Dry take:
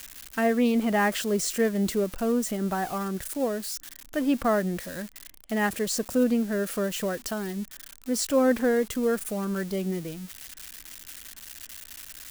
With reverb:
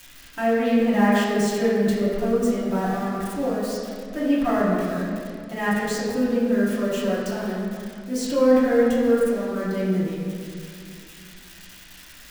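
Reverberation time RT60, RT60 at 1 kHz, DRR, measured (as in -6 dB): 2.3 s, 2.1 s, -9.5 dB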